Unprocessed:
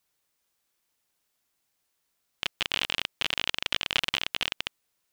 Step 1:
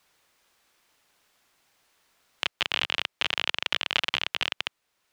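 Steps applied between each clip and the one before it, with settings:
low-pass filter 2,800 Hz 6 dB per octave
low-shelf EQ 440 Hz −7 dB
multiband upward and downward compressor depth 40%
level +4.5 dB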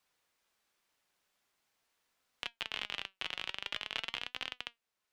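flanger 0.45 Hz, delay 3.8 ms, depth 1.7 ms, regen +83%
level −7.5 dB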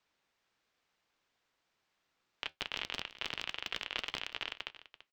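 sub-harmonics by changed cycles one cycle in 3, inverted
moving average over 4 samples
single-tap delay 336 ms −15.5 dB
level +1 dB

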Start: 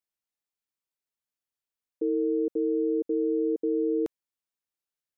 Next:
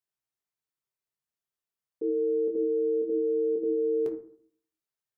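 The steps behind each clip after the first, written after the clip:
convolution reverb RT60 0.55 s, pre-delay 4 ms, DRR 1 dB
level −3.5 dB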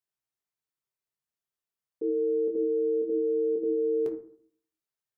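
no processing that can be heard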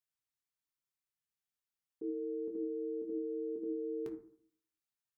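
parametric band 530 Hz −14 dB 0.85 octaves
level −3 dB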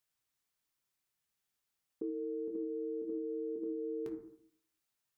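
downward compressor 4 to 1, threshold −44 dBFS, peak gain reduction 8.5 dB
level +7 dB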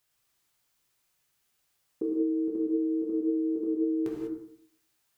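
reverb whose tail is shaped and stops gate 220 ms flat, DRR −1 dB
level +7.5 dB

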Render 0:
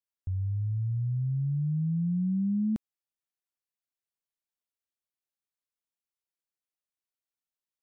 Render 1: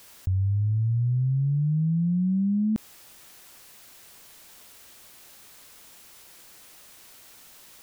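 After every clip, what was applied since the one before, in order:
envelope flattener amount 100%
level +3.5 dB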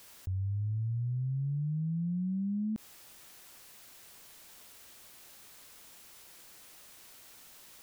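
brickwall limiter −25.5 dBFS, peak gain reduction 8 dB
level −4 dB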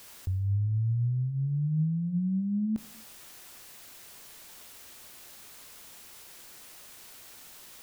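reverb whose tail is shaped and stops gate 310 ms falling, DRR 11.5 dB
level +4.5 dB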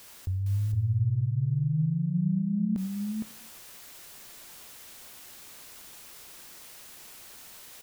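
single-tap delay 462 ms −3.5 dB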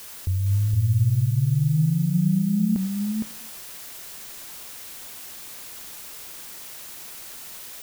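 background noise blue −49 dBFS
level +6 dB

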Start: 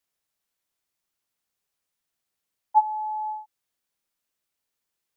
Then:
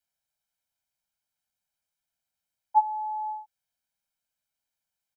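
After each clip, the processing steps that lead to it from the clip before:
comb filter 1.3 ms, depth 78%
level −6.5 dB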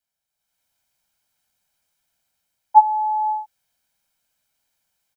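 automatic gain control gain up to 11.5 dB
level +1 dB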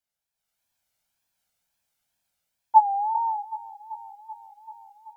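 tape wow and flutter 130 cents
delay that swaps between a low-pass and a high-pass 385 ms, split 860 Hz, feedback 71%, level −13.5 dB
level −4 dB

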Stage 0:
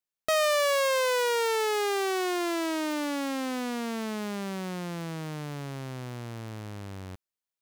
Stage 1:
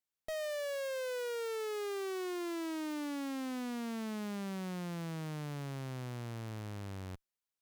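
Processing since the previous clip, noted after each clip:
tube saturation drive 37 dB, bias 0.55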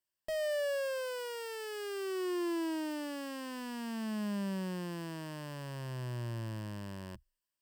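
EQ curve with evenly spaced ripples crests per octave 1.3, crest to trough 10 dB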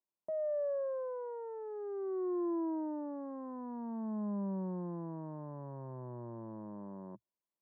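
elliptic band-pass filter 150–1,000 Hz, stop band 50 dB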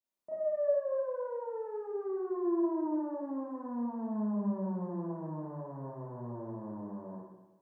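four-comb reverb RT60 1.1 s, combs from 26 ms, DRR −9.5 dB
level −6 dB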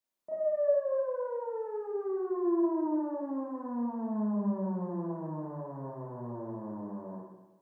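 parametric band 82 Hz −4.5 dB 1.2 octaves
level +2.5 dB

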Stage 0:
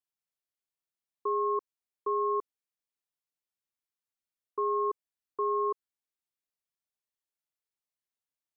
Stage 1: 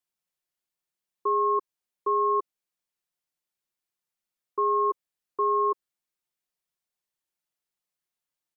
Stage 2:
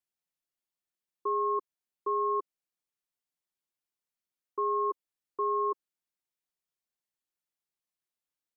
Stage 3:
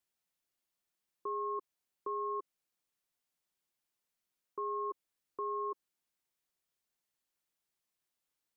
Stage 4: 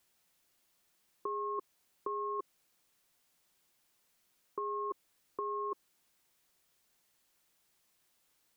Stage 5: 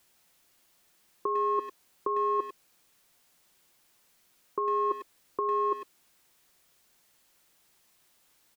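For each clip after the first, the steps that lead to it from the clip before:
comb filter 5.6 ms, depth 39%; level +3.5 dB
parametric band 280 Hz +3 dB 0.77 octaves; level −5.5 dB
brickwall limiter −34.5 dBFS, peak gain reduction 12 dB; level +4 dB
compressor whose output falls as the input rises −43 dBFS, ratio −1; level +6.5 dB
far-end echo of a speakerphone 100 ms, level −9 dB; level +7.5 dB

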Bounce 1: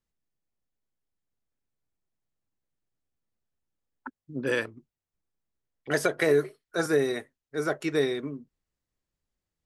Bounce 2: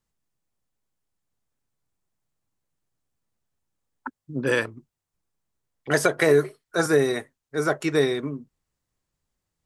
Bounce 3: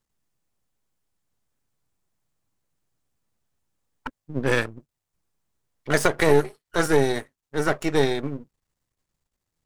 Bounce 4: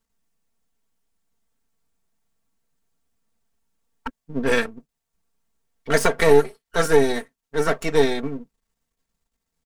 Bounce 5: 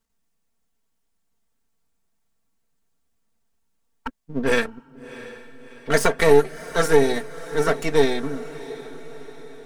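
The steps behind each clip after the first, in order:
graphic EQ with 10 bands 125 Hz +4 dB, 1,000 Hz +4 dB, 8,000 Hz +4 dB; level +3.5 dB
gain on one half-wave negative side −12 dB; level +3.5 dB
comb filter 4.4 ms, depth 73%
feedback delay with all-pass diffusion 680 ms, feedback 53%, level −16 dB

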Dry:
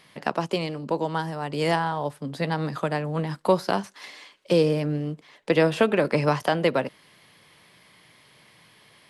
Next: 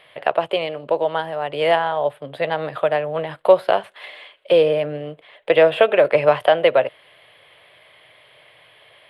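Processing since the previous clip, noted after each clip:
drawn EQ curve 120 Hz 0 dB, 210 Hz −12 dB, 620 Hz +14 dB, 910 Hz +4 dB, 3,300 Hz +9 dB, 5,900 Hz −20 dB, 9,200 Hz −4 dB
level −1.5 dB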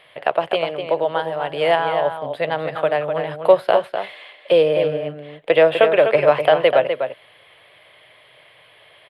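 slap from a distant wall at 43 metres, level −7 dB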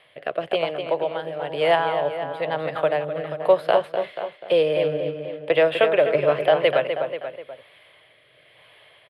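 rotating-speaker cabinet horn 1 Hz
slap from a distant wall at 83 metres, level −11 dB
level −1.5 dB

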